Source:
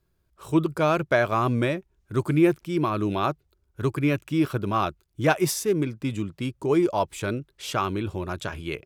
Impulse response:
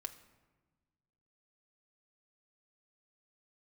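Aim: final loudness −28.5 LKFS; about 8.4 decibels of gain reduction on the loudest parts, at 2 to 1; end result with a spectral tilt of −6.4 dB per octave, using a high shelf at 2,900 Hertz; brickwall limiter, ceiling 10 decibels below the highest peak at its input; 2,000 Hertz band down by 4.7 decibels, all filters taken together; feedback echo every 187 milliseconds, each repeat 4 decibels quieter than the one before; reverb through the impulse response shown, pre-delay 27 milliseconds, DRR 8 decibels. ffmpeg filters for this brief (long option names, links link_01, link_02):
-filter_complex "[0:a]equalizer=frequency=2000:width_type=o:gain=-3.5,highshelf=frequency=2900:gain=-8,acompressor=threshold=-31dB:ratio=2,alimiter=level_in=4dB:limit=-24dB:level=0:latency=1,volume=-4dB,aecho=1:1:187|374|561|748|935|1122|1309|1496|1683:0.631|0.398|0.25|0.158|0.0994|0.0626|0.0394|0.0249|0.0157,asplit=2[link_01][link_02];[1:a]atrim=start_sample=2205,adelay=27[link_03];[link_02][link_03]afir=irnorm=-1:irlink=0,volume=-5dB[link_04];[link_01][link_04]amix=inputs=2:normalize=0,volume=6.5dB"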